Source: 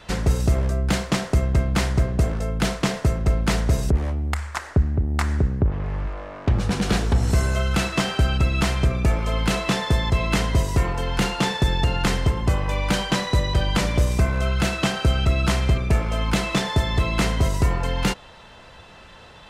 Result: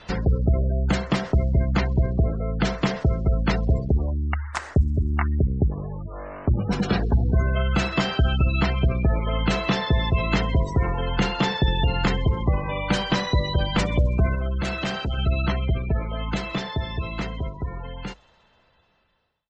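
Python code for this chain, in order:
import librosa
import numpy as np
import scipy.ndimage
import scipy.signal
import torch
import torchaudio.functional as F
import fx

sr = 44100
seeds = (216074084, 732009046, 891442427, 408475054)

p1 = fx.fade_out_tail(x, sr, length_s=5.31)
p2 = fx.clip_hard(p1, sr, threshold_db=-22.5, at=(14.35, 15.18))
p3 = fx.spec_gate(p2, sr, threshold_db=-25, keep='strong')
p4 = fx.hum_notches(p3, sr, base_hz=50, count=2)
y = p4 + fx.echo_wet_highpass(p4, sr, ms=65, feedback_pct=76, hz=5500.0, wet_db=-21.0, dry=0)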